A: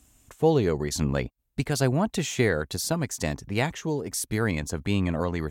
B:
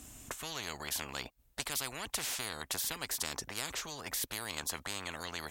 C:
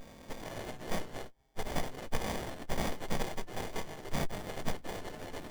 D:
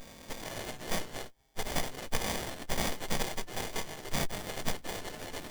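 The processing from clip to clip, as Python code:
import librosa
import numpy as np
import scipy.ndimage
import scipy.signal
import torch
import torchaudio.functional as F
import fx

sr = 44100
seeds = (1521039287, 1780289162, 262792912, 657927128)

y1 = fx.spectral_comp(x, sr, ratio=10.0)
y1 = F.gain(torch.from_numpy(y1), -7.5).numpy()
y2 = fx.freq_snap(y1, sr, grid_st=3)
y2 = fx.running_max(y2, sr, window=33)
y2 = F.gain(torch.from_numpy(y2), -2.0).numpy()
y3 = fx.high_shelf(y2, sr, hz=2000.0, db=8.5)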